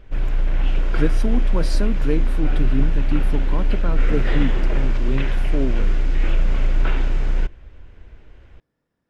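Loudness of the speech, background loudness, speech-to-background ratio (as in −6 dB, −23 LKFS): −28.0 LKFS, −24.0 LKFS, −4.0 dB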